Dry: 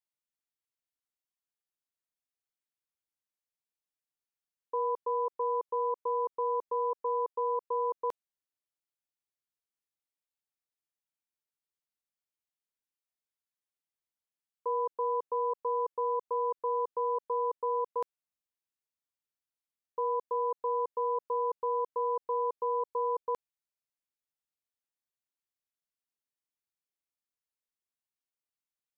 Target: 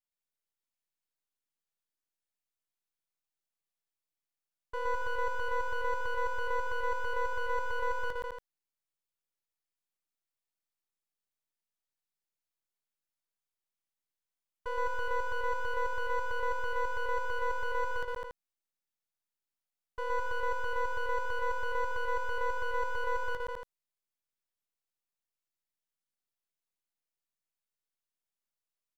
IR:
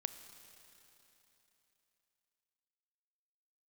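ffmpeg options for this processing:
-af "aeval=exprs='max(val(0),0)':c=same,aecho=1:1:119.5|204.1|282.8:0.891|0.708|0.398,volume=-1dB"

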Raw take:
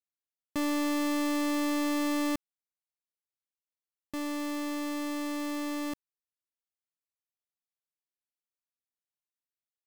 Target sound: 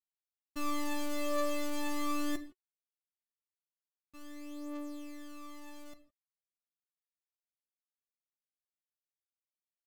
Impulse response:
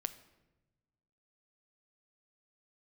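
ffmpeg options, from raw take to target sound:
-filter_complex "[0:a]agate=range=-33dB:threshold=-21dB:ratio=3:detection=peak[a];[1:a]atrim=start_sample=2205,atrim=end_sample=6174,asetrate=36162,aresample=44100[b];[a][b]afir=irnorm=-1:irlink=0,aphaser=in_gain=1:out_gain=1:delay=2.9:decay=0.67:speed=0.21:type=triangular,volume=8dB"

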